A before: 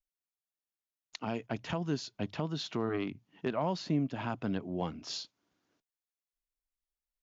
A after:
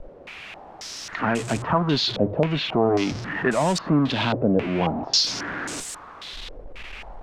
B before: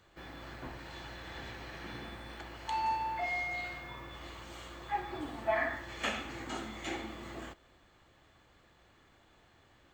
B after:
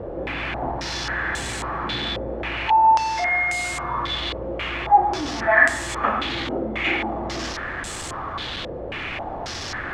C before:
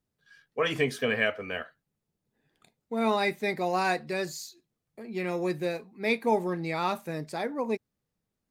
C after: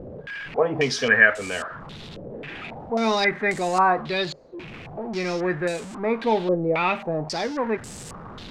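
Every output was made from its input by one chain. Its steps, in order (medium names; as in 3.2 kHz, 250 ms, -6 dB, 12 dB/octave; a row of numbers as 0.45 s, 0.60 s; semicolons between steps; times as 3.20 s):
jump at every zero crossing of -35.5 dBFS; step-sequenced low-pass 3.7 Hz 530–8000 Hz; normalise loudness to -23 LUFS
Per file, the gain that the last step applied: +8.5 dB, +7.5 dB, +2.5 dB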